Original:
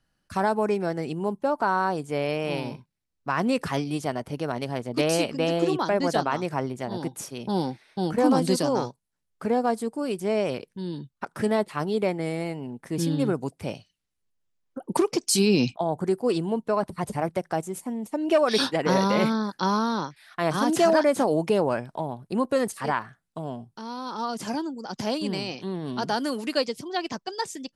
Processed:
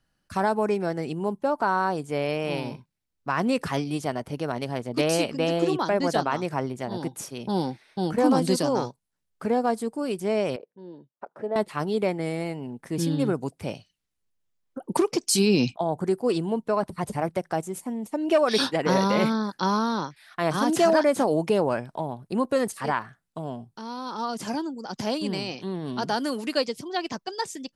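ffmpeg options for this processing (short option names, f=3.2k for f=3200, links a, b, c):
-filter_complex "[0:a]asettb=1/sr,asplit=3[a][b][c];[a]atrim=end=10.564[d];[b]atrim=start=10.56:end=11.56,asetpts=PTS-STARTPTS,afade=t=in:d=0.004:c=qsin,afade=t=out:st=0.996:d=0.004:c=qsin,bandpass=f=580:t=q:w=2[e];[c]atrim=start=11.556[f];[d][e]acrossfade=d=0.004:c1=hsin:c2=qsin[g];[g][f]acrossfade=d=0.004:c1=qsin:c2=hsin"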